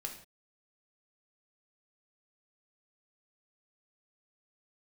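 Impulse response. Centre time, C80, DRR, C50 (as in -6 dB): 20 ms, 11.5 dB, 2.0 dB, 8.0 dB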